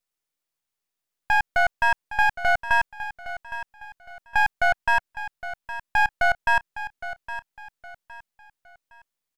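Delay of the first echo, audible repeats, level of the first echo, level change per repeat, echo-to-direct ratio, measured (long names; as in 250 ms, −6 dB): 813 ms, 3, −13.0 dB, −9.5 dB, −12.5 dB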